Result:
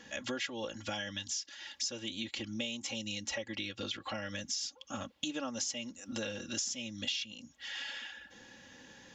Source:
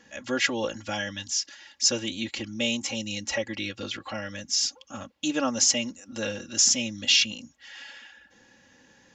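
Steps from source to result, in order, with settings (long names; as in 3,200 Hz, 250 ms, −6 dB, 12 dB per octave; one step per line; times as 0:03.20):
parametric band 3,400 Hz +5 dB 0.44 octaves
downward compressor 6 to 1, threshold −38 dBFS, peak gain reduction 22 dB
level +2 dB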